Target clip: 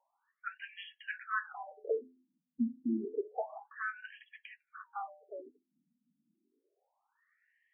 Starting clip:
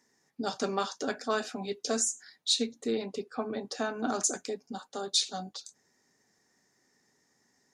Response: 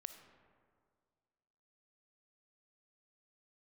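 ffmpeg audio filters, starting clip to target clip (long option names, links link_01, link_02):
-af "bandreject=frequency=85.32:width_type=h:width=4,bandreject=frequency=170.64:width_type=h:width=4,bandreject=frequency=255.96:width_type=h:width=4,bandreject=frequency=341.28:width_type=h:width=4,bandreject=frequency=426.6:width_type=h:width=4,bandreject=frequency=511.92:width_type=h:width=4,bandreject=frequency=597.24:width_type=h:width=4,bandreject=frequency=682.56:width_type=h:width=4,bandreject=frequency=767.88:width_type=h:width=4,bandreject=frequency=853.2:width_type=h:width=4,bandreject=frequency=938.52:width_type=h:width=4,afftfilt=real='re*between(b*sr/1024,200*pow(2400/200,0.5+0.5*sin(2*PI*0.29*pts/sr))/1.41,200*pow(2400/200,0.5+0.5*sin(2*PI*0.29*pts/sr))*1.41)':imag='im*between(b*sr/1024,200*pow(2400/200,0.5+0.5*sin(2*PI*0.29*pts/sr))/1.41,200*pow(2400/200,0.5+0.5*sin(2*PI*0.29*pts/sr))*1.41)':win_size=1024:overlap=0.75,volume=2dB"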